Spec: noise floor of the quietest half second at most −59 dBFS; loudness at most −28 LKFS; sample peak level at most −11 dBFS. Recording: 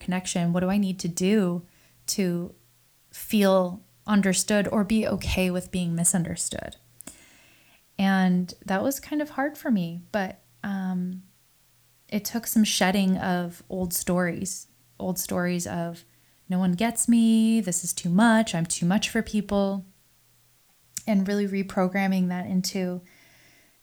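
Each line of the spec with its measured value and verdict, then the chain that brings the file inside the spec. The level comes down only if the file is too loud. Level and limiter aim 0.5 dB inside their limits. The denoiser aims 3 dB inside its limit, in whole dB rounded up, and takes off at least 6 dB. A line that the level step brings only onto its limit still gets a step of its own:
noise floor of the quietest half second −62 dBFS: in spec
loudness −25.0 LKFS: out of spec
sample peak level −7.0 dBFS: out of spec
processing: level −3.5 dB
brickwall limiter −11.5 dBFS

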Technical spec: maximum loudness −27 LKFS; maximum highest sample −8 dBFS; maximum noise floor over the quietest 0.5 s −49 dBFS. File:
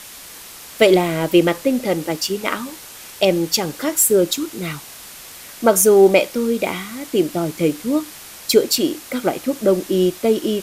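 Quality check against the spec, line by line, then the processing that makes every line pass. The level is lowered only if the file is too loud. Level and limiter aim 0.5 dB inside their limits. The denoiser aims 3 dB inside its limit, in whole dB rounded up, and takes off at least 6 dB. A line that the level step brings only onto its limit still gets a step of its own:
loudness −18.0 LKFS: out of spec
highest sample −1.5 dBFS: out of spec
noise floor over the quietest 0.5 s −38 dBFS: out of spec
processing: broadband denoise 6 dB, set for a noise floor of −38 dBFS
level −9.5 dB

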